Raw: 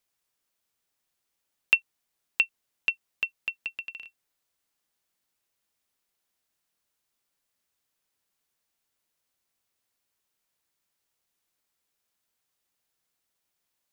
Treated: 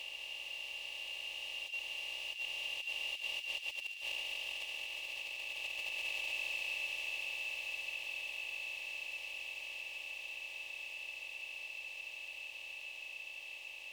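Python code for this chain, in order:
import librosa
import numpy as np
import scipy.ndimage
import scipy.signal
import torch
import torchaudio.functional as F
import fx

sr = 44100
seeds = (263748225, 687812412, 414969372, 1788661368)

p1 = fx.bin_compress(x, sr, power=0.2)
p2 = fx.doppler_pass(p1, sr, speed_mps=6, closest_m=5.0, pass_at_s=4.93)
p3 = fx.low_shelf(p2, sr, hz=210.0, db=-9.0)
p4 = p3 + 0.63 * np.pad(p3, (int(3.5 * sr / 1000.0), 0))[:len(p3)]
p5 = fx.over_compress(p4, sr, threshold_db=-38.0, ratio=-0.5)
p6 = fx.fixed_phaser(p5, sr, hz=600.0, stages=4)
p7 = p6 + fx.echo_wet_highpass(p6, sr, ms=71, feedback_pct=85, hz=1700.0, wet_db=-10.5, dry=0)
p8 = fx.band_squash(p7, sr, depth_pct=40)
y = p8 * librosa.db_to_amplitude(1.0)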